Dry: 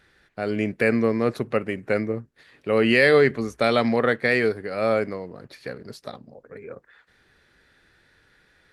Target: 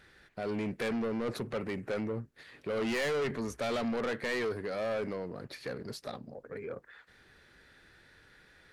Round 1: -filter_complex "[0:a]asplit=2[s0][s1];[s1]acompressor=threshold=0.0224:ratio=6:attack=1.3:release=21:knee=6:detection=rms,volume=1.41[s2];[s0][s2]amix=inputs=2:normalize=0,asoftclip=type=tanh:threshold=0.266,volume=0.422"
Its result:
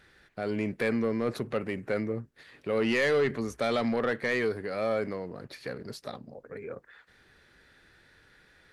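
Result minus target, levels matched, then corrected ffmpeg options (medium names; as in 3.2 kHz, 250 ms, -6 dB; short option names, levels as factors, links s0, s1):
saturation: distortion -9 dB
-filter_complex "[0:a]asplit=2[s0][s1];[s1]acompressor=threshold=0.0224:ratio=6:attack=1.3:release=21:knee=6:detection=rms,volume=1.41[s2];[s0][s2]amix=inputs=2:normalize=0,asoftclip=type=tanh:threshold=0.0841,volume=0.422"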